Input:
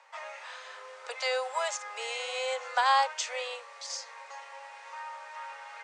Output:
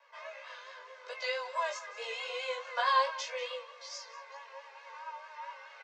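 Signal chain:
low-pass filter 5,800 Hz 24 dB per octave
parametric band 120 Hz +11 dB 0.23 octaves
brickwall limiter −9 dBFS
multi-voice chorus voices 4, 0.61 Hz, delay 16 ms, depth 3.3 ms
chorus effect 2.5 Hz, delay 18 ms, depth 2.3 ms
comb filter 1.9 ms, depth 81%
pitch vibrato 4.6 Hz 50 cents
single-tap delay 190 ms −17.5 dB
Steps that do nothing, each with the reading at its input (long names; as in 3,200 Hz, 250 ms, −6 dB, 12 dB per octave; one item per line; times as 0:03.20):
parametric band 120 Hz: nothing at its input below 430 Hz
brickwall limiter −9 dBFS: peak of its input −15.0 dBFS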